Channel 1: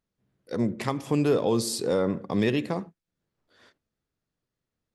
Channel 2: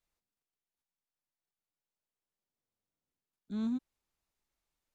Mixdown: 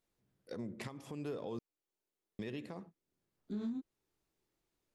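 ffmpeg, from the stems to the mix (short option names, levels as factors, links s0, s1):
-filter_complex "[0:a]acompressor=threshold=0.0631:ratio=6,volume=0.501,asplit=3[s0][s1][s2];[s0]atrim=end=1.59,asetpts=PTS-STARTPTS,afade=t=out:st=1.586:d=0.004:c=hsin[s3];[s1]atrim=start=1.59:end=2.39,asetpts=PTS-STARTPTS,volume=0[s4];[s2]atrim=start=2.39,asetpts=PTS-STARTPTS,afade=t=in:d=0.004:c=hsin[s5];[s3][s4][s5]concat=n=3:v=0:a=1[s6];[1:a]flanger=delay=20:depth=6.4:speed=1.2,equalizer=f=360:w=1.6:g=12.5,acompressor=threshold=0.0178:ratio=2,volume=1.33[s7];[s6][s7]amix=inputs=2:normalize=0,alimiter=level_in=2.66:limit=0.0631:level=0:latency=1:release=449,volume=0.376"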